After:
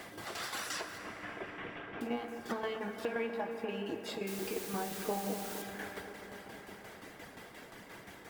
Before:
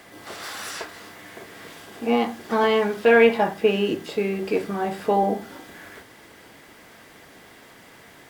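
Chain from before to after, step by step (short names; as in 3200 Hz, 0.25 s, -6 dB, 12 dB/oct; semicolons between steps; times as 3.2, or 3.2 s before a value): 0.98–2.01 CVSD 16 kbps; reverb removal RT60 0.81 s; compressor 6:1, threshold -35 dBFS, peak gain reduction 21 dB; tremolo saw down 5.7 Hz, depth 70%; 4.27–5.62 requantised 8-bit, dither triangular; dark delay 0.247 s, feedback 72%, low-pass 2200 Hz, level -11 dB; plate-style reverb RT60 4.5 s, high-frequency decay 0.45×, DRR 6.5 dB; mismatched tape noise reduction decoder only; gain +2 dB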